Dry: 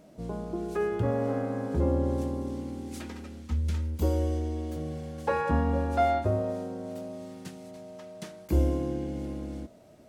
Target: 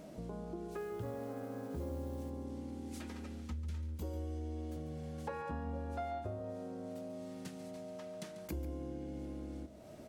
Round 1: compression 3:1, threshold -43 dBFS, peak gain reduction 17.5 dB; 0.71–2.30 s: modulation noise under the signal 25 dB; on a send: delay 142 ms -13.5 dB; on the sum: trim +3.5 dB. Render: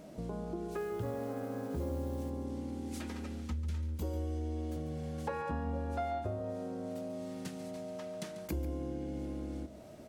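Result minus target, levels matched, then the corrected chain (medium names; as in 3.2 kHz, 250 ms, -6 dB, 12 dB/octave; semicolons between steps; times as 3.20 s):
compression: peak gain reduction -4.5 dB
compression 3:1, threshold -49.5 dBFS, peak gain reduction 21.5 dB; 0.71–2.30 s: modulation noise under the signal 25 dB; on a send: delay 142 ms -13.5 dB; on the sum: trim +3.5 dB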